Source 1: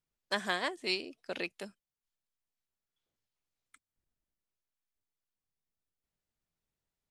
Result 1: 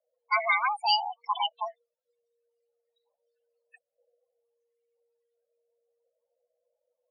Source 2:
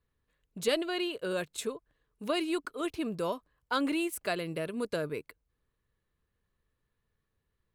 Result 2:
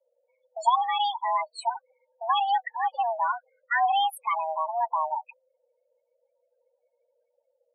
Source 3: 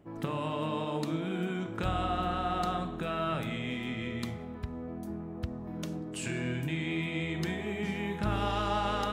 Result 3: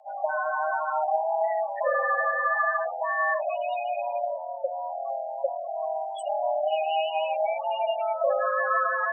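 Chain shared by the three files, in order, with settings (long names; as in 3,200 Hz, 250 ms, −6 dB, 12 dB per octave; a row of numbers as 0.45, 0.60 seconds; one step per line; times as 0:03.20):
spectral peaks only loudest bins 8
frequency shifter +470 Hz
loudness normalisation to −27 LKFS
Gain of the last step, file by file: +12.5, +7.5, +8.5 decibels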